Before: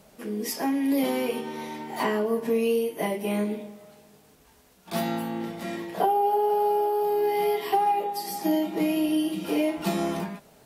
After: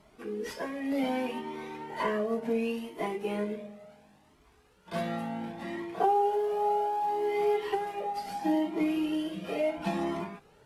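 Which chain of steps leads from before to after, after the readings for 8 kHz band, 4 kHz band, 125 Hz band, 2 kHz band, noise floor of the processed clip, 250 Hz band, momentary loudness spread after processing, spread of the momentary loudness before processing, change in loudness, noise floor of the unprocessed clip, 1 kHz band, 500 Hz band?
under -10 dB, -7.0 dB, -5.5 dB, -3.5 dB, -62 dBFS, -5.5 dB, 10 LU, 10 LU, -5.0 dB, -57 dBFS, -4.5 dB, -4.5 dB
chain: CVSD coder 64 kbps; tone controls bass -1 dB, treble -12 dB; Shepard-style flanger rising 0.69 Hz; trim +1.5 dB

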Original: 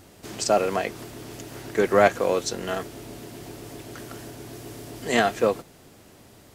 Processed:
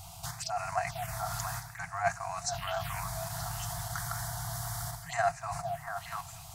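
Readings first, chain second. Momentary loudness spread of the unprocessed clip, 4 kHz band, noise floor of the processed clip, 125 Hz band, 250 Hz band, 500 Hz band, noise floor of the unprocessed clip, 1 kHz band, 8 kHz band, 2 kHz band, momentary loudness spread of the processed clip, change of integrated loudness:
20 LU, -6.5 dB, -48 dBFS, +0.5 dB, -19.5 dB, -14.5 dB, -52 dBFS, -5.0 dB, -2.0 dB, -7.5 dB, 7 LU, -11.5 dB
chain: touch-sensitive phaser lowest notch 270 Hz, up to 3.3 kHz, full sweep at -22 dBFS; repeats whose band climbs or falls 231 ms, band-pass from 170 Hz, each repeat 1.4 oct, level -7 dB; reverse; compression 8:1, threshold -32 dBFS, peak gain reduction 18 dB; reverse; FFT band-reject 180–650 Hz; in parallel at +0.5 dB: level held to a coarse grid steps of 12 dB; on the sum: crackle 30 per s -48 dBFS; trim +3.5 dB

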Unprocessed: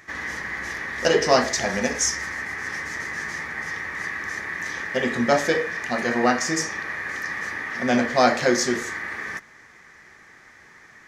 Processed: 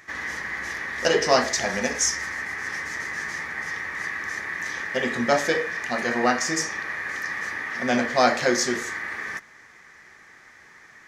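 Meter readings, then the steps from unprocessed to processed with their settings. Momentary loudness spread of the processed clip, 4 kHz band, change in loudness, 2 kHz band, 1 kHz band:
10 LU, 0.0 dB, -1.0 dB, -0.5 dB, -1.0 dB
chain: bass shelf 480 Hz -4 dB

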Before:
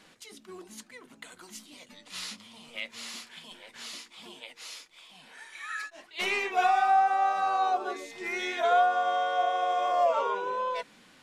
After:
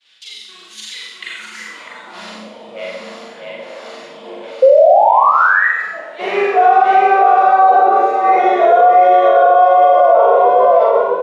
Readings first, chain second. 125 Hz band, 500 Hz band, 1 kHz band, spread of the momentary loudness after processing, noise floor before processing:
no reading, +21.5 dB, +17.0 dB, 19 LU, -58 dBFS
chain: expander -51 dBFS; on a send: delay 649 ms -3.5 dB; on the sum: painted sound rise, 4.62–5.67 s, 510–2000 Hz -22 dBFS; doubling 42 ms -2 dB; level rider gain up to 4 dB; band-pass sweep 3.5 kHz -> 560 Hz, 1.08–2.35 s; Schroeder reverb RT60 0.83 s, combs from 33 ms, DRR -2.5 dB; loudness maximiser +16 dB; trim -1 dB

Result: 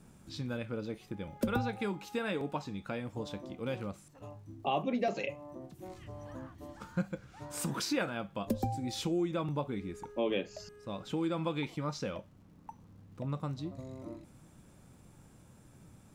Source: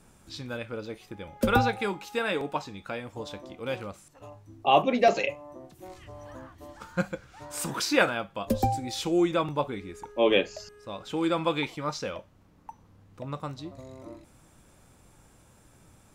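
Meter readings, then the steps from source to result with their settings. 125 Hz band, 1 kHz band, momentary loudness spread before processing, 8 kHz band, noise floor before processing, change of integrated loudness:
-2.0 dB, -10.5 dB, 22 LU, -6.0 dB, -59 dBFS, -8.5 dB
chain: peaking EQ 170 Hz +9 dB 2 oct; compression 2.5:1, threshold -27 dBFS, peak gain reduction 10 dB; crackle 160 per s -58 dBFS; trim -5 dB

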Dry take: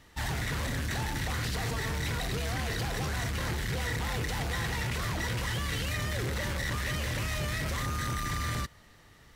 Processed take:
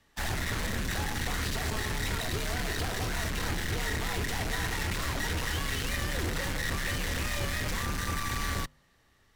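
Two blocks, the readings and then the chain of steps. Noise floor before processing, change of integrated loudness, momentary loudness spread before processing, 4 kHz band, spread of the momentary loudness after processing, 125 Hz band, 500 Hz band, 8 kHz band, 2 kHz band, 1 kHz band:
-57 dBFS, +0.5 dB, 1 LU, +1.5 dB, 1 LU, -2.5 dB, +0.5 dB, +2.5 dB, +1.0 dB, +0.5 dB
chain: de-hum 94.49 Hz, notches 14; Chebyshev shaper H 7 -14 dB, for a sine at -23 dBFS; frequency shift -38 Hz

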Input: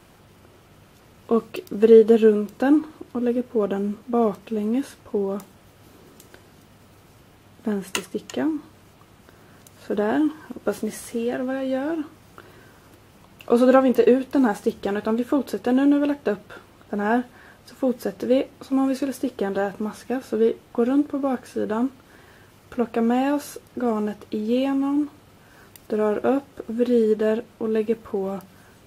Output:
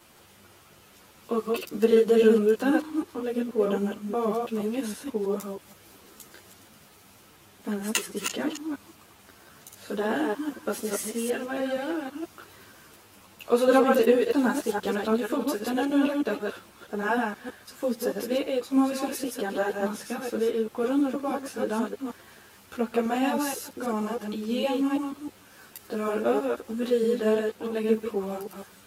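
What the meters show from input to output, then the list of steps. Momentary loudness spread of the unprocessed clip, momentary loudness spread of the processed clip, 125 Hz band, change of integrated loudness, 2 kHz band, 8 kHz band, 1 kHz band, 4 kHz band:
11 LU, 15 LU, no reading, -4.0 dB, +0.5 dB, +4.5 dB, -2.0 dB, +2.0 dB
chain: chunks repeated in reverse 159 ms, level -3 dB; tilt EQ +2 dB/octave; three-phase chorus

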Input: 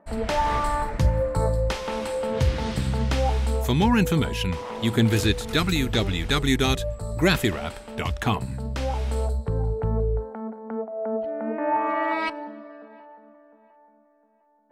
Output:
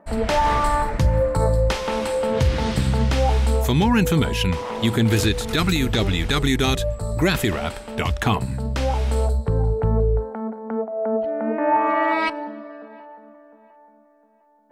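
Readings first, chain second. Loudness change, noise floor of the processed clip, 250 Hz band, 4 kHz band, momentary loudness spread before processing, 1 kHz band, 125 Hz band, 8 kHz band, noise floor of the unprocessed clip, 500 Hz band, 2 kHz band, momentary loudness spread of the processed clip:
+3.5 dB, -54 dBFS, +3.0 dB, +2.5 dB, 10 LU, +4.0 dB, +3.5 dB, +3.5 dB, -59 dBFS, +4.0 dB, +3.0 dB, 8 LU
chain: peak limiter -14.5 dBFS, peak gain reduction 7 dB; trim +5 dB

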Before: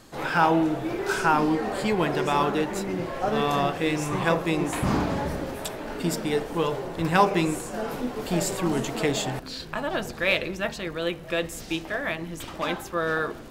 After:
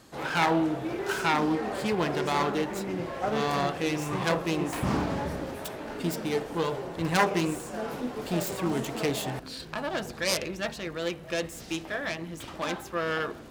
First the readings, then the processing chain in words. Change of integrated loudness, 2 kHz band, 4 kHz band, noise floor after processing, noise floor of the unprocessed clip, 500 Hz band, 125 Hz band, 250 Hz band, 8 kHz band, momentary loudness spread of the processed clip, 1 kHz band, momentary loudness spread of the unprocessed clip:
-3.5 dB, -3.5 dB, -2.0 dB, -44 dBFS, -40 dBFS, -3.5 dB, -3.5 dB, -3.5 dB, -2.5 dB, 9 LU, -4.0 dB, 9 LU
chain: self-modulated delay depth 0.28 ms; high-pass 45 Hz; trim -3 dB

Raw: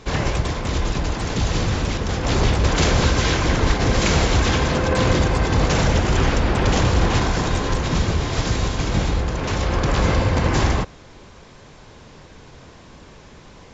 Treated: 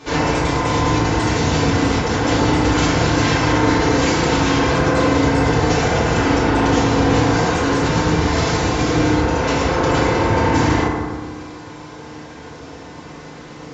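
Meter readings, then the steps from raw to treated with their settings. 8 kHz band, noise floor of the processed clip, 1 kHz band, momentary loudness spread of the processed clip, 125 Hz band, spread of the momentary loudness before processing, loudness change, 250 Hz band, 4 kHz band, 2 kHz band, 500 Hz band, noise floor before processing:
no reading, -36 dBFS, +6.0 dB, 20 LU, +0.5 dB, 6 LU, +3.5 dB, +6.5 dB, +1.5 dB, +4.5 dB, +5.5 dB, -45 dBFS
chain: high-pass 240 Hz 6 dB/octave; compression, threshold -24 dBFS, peak gain reduction 8 dB; FDN reverb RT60 1.6 s, low-frequency decay 1.3×, high-frequency decay 0.35×, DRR -9 dB

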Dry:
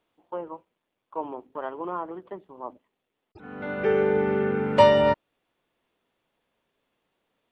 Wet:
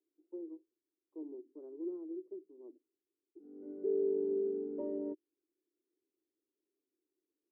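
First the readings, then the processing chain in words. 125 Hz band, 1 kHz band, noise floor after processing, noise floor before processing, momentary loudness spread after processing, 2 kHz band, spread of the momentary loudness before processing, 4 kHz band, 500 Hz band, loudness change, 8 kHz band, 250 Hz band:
under -30 dB, under -35 dB, under -85 dBFS, -82 dBFS, 21 LU, under -40 dB, 23 LU, under -40 dB, -13.5 dB, -15.0 dB, no reading, -10.0 dB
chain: Butterworth band-pass 340 Hz, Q 3.7; trim -2.5 dB

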